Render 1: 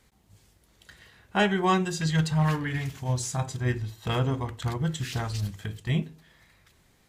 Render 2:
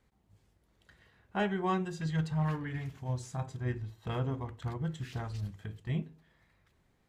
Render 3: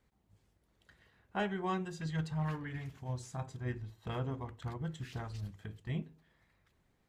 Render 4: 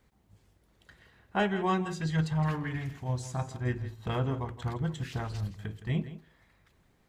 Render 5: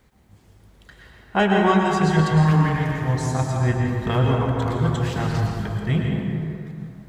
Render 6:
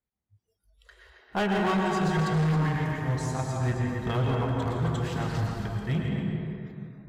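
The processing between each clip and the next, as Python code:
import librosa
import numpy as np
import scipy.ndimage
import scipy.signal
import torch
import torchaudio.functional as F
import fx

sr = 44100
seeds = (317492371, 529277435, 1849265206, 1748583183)

y1 = fx.high_shelf(x, sr, hz=2800.0, db=-11.5)
y1 = y1 * 10.0 ** (-7.0 / 20.0)
y2 = fx.hpss(y1, sr, part='harmonic', gain_db=-3)
y2 = y2 * 10.0 ** (-1.5 / 20.0)
y3 = y2 + 10.0 ** (-14.0 / 20.0) * np.pad(y2, (int(165 * sr / 1000.0), 0))[:len(y2)]
y3 = y3 * 10.0 ** (7.0 / 20.0)
y4 = fx.rev_plate(y3, sr, seeds[0], rt60_s=2.7, hf_ratio=0.45, predelay_ms=95, drr_db=-0.5)
y4 = y4 * 10.0 ** (8.5 / 20.0)
y5 = y4 + 10.0 ** (-10.0 / 20.0) * np.pad(y4, (int(270 * sr / 1000.0), 0))[:len(y4)]
y5 = np.clip(y5, -10.0 ** (-15.5 / 20.0), 10.0 ** (-15.5 / 20.0))
y5 = fx.noise_reduce_blind(y5, sr, reduce_db=27)
y5 = y5 * 10.0 ** (-6.0 / 20.0)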